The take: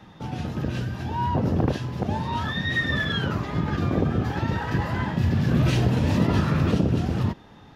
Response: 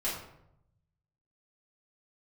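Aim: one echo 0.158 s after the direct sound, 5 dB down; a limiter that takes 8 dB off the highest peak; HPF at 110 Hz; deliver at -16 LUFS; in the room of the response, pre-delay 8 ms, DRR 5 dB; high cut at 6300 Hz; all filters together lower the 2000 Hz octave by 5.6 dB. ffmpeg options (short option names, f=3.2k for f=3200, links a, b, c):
-filter_complex "[0:a]highpass=110,lowpass=6.3k,equalizer=f=2k:t=o:g=-6.5,alimiter=limit=-17.5dB:level=0:latency=1,aecho=1:1:158:0.562,asplit=2[a][b];[1:a]atrim=start_sample=2205,adelay=8[c];[b][c]afir=irnorm=-1:irlink=0,volume=-11dB[d];[a][d]amix=inputs=2:normalize=0,volume=9.5dB"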